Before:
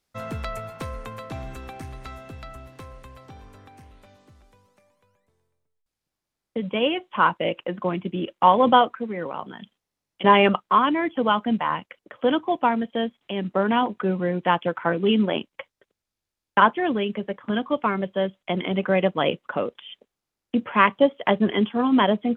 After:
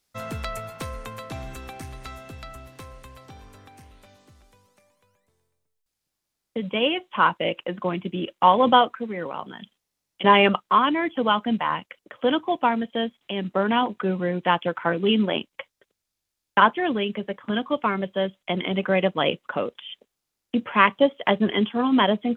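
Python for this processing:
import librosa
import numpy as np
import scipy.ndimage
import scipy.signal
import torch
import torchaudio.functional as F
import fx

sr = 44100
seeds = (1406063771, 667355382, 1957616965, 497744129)

y = fx.high_shelf(x, sr, hz=3000.0, db=7.5)
y = y * 10.0 ** (-1.0 / 20.0)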